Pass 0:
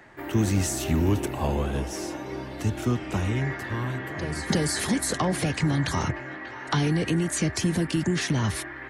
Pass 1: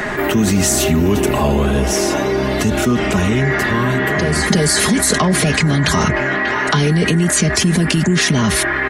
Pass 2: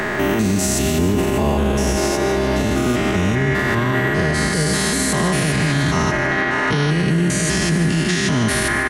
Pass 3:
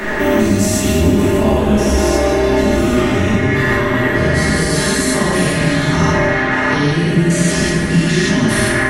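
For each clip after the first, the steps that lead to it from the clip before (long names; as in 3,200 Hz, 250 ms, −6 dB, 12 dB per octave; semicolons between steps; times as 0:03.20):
notch filter 850 Hz, Q 12; comb filter 4.8 ms, depth 57%; envelope flattener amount 70%; level +5.5 dB
spectrum averaged block by block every 200 ms; repeating echo 150 ms, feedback 58%, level −11 dB; boost into a limiter +9 dB; level −8 dB
rectangular room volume 210 cubic metres, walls mixed, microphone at 2.6 metres; level −5.5 dB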